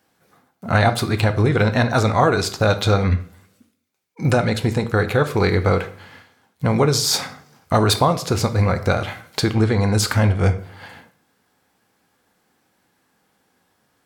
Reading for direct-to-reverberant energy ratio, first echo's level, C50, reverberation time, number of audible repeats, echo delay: 8.0 dB, no echo, 14.5 dB, 0.50 s, no echo, no echo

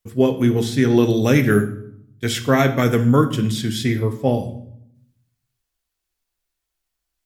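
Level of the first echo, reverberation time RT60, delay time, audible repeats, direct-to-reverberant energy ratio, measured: no echo, 0.70 s, no echo, no echo, 7.0 dB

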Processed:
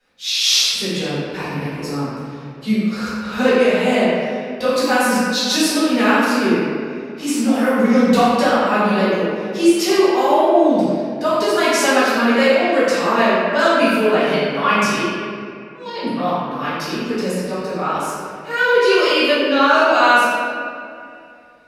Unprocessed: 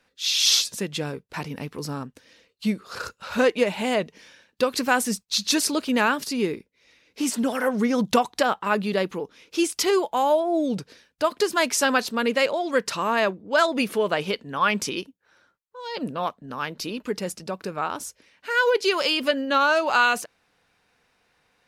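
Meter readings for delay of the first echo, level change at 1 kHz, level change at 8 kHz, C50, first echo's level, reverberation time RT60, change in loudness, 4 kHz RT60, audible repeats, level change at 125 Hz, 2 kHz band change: no echo, +7.5 dB, +3.0 dB, -4.0 dB, no echo, 2.5 s, +7.0 dB, 1.4 s, no echo, +8.5 dB, +7.0 dB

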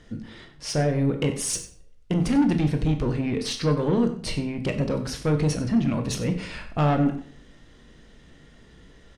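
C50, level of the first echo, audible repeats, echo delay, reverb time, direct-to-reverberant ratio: 10.0 dB, -15.5 dB, 1, 94 ms, 0.55 s, 5.5 dB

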